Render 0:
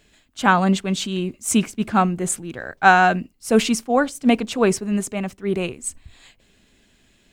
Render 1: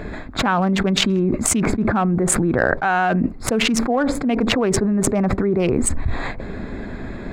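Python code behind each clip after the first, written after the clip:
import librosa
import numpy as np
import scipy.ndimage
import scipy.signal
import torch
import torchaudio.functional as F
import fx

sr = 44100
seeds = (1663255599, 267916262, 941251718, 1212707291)

y = fx.wiener(x, sr, points=15)
y = fx.bass_treble(y, sr, bass_db=-1, treble_db=-12)
y = fx.env_flatten(y, sr, amount_pct=100)
y = F.gain(torch.from_numpy(y), -8.5).numpy()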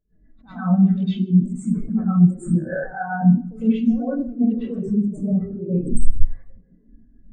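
y = fx.echo_feedback(x, sr, ms=153, feedback_pct=51, wet_db=-11.5)
y = fx.rev_plate(y, sr, seeds[0], rt60_s=0.61, hf_ratio=1.0, predelay_ms=90, drr_db=-8.0)
y = fx.spectral_expand(y, sr, expansion=2.5)
y = F.gain(torch.from_numpy(y), -5.5).numpy()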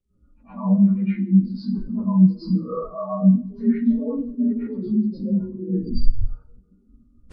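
y = fx.partial_stretch(x, sr, pct=84)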